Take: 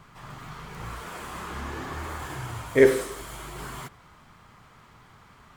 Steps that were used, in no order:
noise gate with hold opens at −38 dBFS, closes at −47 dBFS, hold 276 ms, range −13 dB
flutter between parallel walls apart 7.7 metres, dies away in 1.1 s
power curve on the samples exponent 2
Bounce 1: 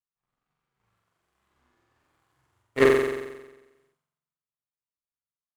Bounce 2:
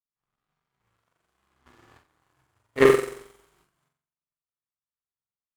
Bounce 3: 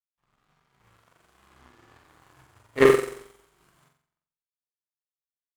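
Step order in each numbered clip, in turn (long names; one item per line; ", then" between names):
power curve on the samples, then noise gate with hold, then flutter between parallel walls
flutter between parallel walls, then power curve on the samples, then noise gate with hold
noise gate with hold, then flutter between parallel walls, then power curve on the samples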